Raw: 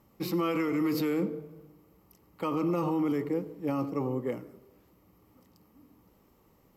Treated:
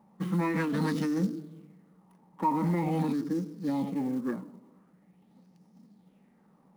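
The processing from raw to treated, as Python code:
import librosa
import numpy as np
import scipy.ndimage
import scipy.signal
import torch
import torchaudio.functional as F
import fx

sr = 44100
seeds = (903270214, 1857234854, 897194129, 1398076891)

p1 = scipy.signal.medfilt(x, 9)
p2 = fx.low_shelf_res(p1, sr, hz=130.0, db=-12.5, q=3.0)
p3 = 10.0 ** (-28.0 / 20.0) * np.tanh(p2 / 10.0 ** (-28.0 / 20.0))
p4 = p2 + (p3 * 10.0 ** (-11.5 / 20.0))
p5 = fx.formant_shift(p4, sr, semitones=-4)
p6 = fx.quant_float(p5, sr, bits=4)
p7 = fx.bell_lfo(p6, sr, hz=0.44, low_hz=930.0, high_hz=5500.0, db=11)
y = p7 * 10.0 ** (-3.0 / 20.0)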